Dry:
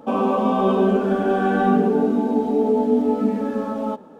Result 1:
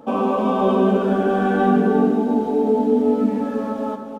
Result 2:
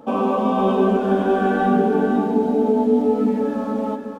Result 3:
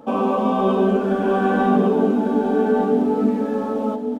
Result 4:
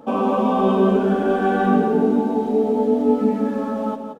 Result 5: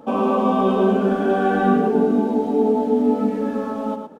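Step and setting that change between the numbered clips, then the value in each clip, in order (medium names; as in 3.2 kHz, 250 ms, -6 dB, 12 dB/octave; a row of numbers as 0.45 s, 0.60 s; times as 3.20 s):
delay, time: 305 ms, 501 ms, 1151 ms, 176 ms, 110 ms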